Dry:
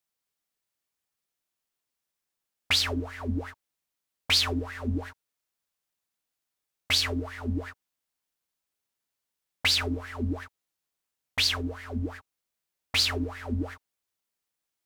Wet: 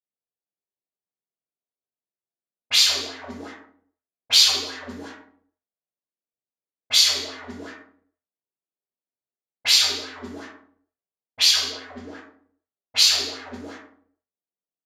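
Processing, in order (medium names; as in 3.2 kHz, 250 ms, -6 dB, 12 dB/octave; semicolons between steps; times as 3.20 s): resampled via 32 kHz; reverberation RT60 0.70 s, pre-delay 3 ms, DRR -10.5 dB; level-controlled noise filter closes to 410 Hz, open at -9.5 dBFS; RIAA curve recording; trim -15.5 dB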